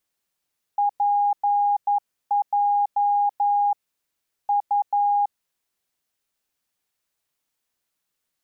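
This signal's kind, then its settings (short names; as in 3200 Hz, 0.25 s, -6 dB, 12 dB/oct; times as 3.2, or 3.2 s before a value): Morse "PJ U" 11 wpm 817 Hz -17 dBFS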